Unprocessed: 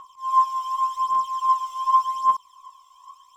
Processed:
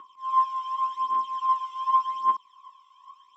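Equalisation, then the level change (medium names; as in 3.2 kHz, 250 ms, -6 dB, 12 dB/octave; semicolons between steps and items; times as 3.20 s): band-pass 130–2600 Hz; static phaser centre 300 Hz, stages 4; +3.5 dB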